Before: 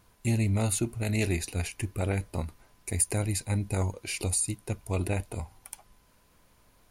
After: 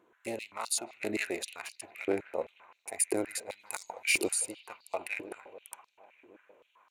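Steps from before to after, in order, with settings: local Wiener filter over 9 samples; 3.59–4.33 s: treble shelf 3.4 kHz +11 dB; bucket-brigade echo 153 ms, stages 4096, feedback 84%, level -20 dB; step-sequenced high-pass 7.7 Hz 350–4600 Hz; trim -3 dB

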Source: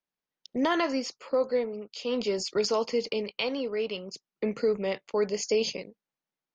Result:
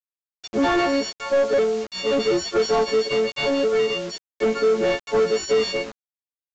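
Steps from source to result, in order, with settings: partials quantised in pitch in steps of 4 st; dynamic bell 390 Hz, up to +5 dB, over -36 dBFS, Q 0.93; overdrive pedal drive 24 dB, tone 1 kHz, clips at -10.5 dBFS; bit crusher 6-bit; resampled via 16 kHz

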